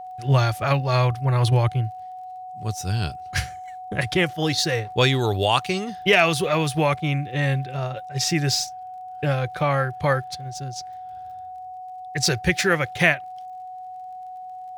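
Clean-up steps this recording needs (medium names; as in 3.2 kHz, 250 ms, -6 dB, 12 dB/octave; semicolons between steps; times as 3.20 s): clip repair -5 dBFS; de-click; band-stop 740 Hz, Q 30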